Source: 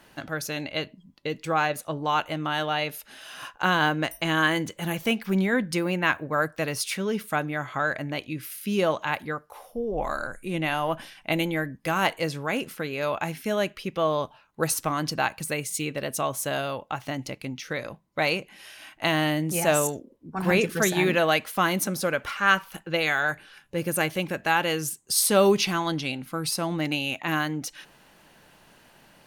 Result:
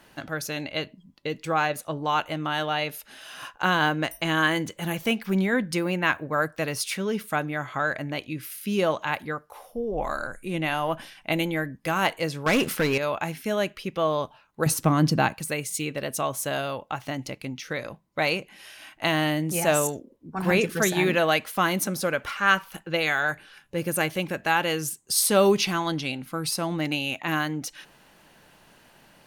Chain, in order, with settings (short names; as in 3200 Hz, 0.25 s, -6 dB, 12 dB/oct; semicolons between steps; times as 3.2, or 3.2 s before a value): 12.46–12.98 sample leveller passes 3; 14.66–15.34 bell 170 Hz +12 dB 2.7 oct